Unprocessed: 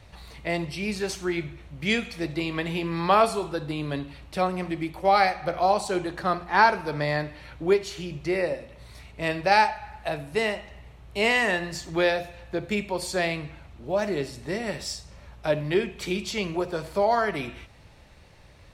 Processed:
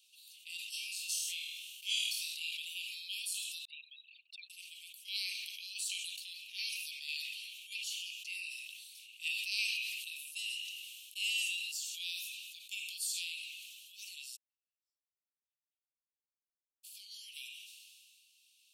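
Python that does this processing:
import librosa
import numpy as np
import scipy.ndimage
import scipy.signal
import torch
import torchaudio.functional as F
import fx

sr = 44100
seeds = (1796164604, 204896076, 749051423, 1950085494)

y = fx.room_flutter(x, sr, wall_m=4.3, rt60_s=0.39, at=(0.69, 2.51))
y = fx.envelope_sharpen(y, sr, power=3.0, at=(3.65, 4.5))
y = fx.filter_held_highpass(y, sr, hz=12.0, low_hz=990.0, high_hz=2500.0, at=(5.01, 10.3), fade=0.02)
y = fx.gaussian_blur(y, sr, sigma=18.0, at=(14.35, 16.83), fade=0.02)
y = scipy.signal.sosfilt(scipy.signal.butter(16, 2700.0, 'highpass', fs=sr, output='sos'), y)
y = fx.peak_eq(y, sr, hz=4300.0, db=-13.0, octaves=2.0)
y = fx.sustainer(y, sr, db_per_s=25.0)
y = y * 10.0 ** (6.0 / 20.0)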